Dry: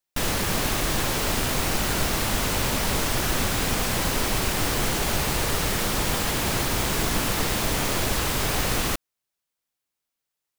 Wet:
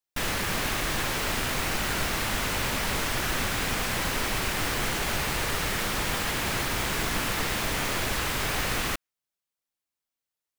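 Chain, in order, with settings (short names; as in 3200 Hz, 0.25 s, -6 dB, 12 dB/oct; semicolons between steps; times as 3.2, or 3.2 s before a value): dynamic EQ 1900 Hz, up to +6 dB, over -44 dBFS, Q 0.74; gain -5.5 dB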